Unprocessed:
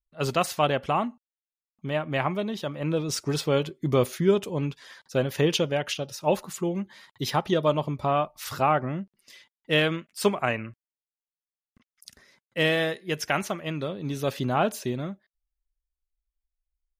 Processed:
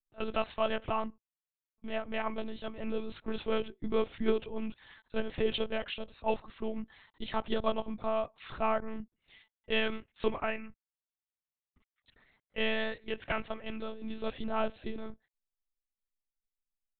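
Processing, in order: monotone LPC vocoder at 8 kHz 220 Hz; gain -7 dB

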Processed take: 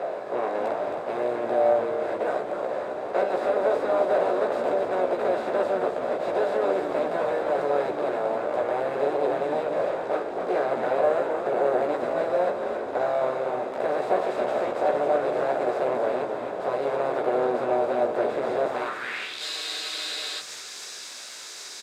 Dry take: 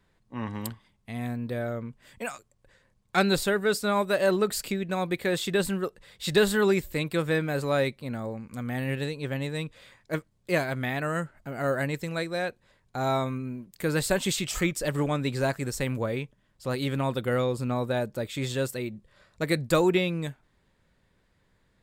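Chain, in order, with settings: per-bin compression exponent 0.2; low shelf 76 Hz -11 dB; notches 50/100/150/200 Hz; chorus voices 6, 0.2 Hz, delay 15 ms, depth 1.8 ms; harmoniser +4 st -9 dB; high shelf 12000 Hz +4 dB; frequency-shifting echo 0.267 s, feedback 50%, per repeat -130 Hz, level -6 dB; band-pass sweep 640 Hz -> 5800 Hz, 18.66–19.55; spectral freeze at 19.44, 0.96 s

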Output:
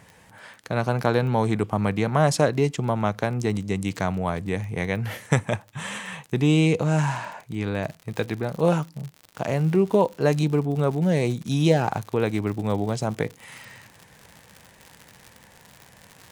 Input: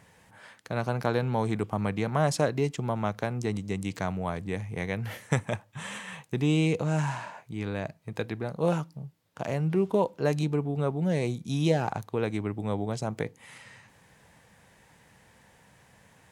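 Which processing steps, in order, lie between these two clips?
crackle 15/s -38 dBFS, from 7.84 s 120/s; gain +5.5 dB

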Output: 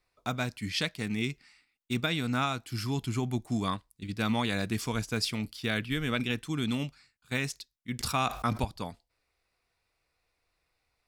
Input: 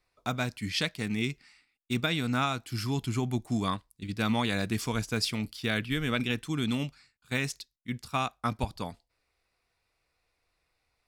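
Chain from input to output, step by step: 7.99–8.65 fast leveller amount 70%; gain -1 dB

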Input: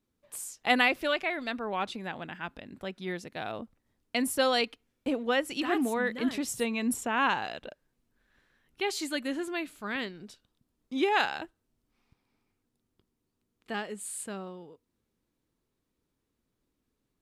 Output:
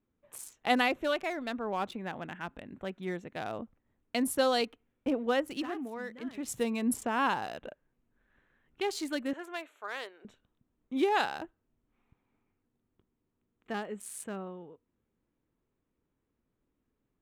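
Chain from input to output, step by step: Wiener smoothing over 9 samples; 5.54–6.54 dip -10 dB, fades 0.20 s; 9.33–10.25 HPF 470 Hz 24 dB/oct; dynamic EQ 2300 Hz, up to -6 dB, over -42 dBFS, Q 0.95

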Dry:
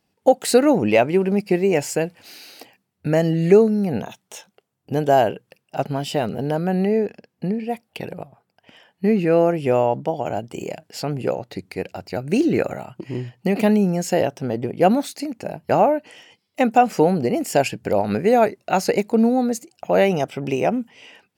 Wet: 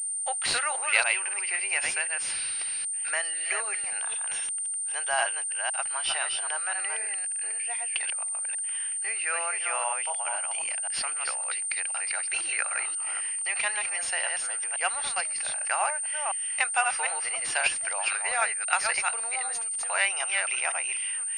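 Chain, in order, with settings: reverse delay 0.259 s, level -4 dB; in parallel at -1.5 dB: compressor, threshold -28 dBFS, peak gain reduction 19.5 dB; on the sum: HPF 1200 Hz 24 dB/oct; pulse-width modulation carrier 8900 Hz; gain +1.5 dB

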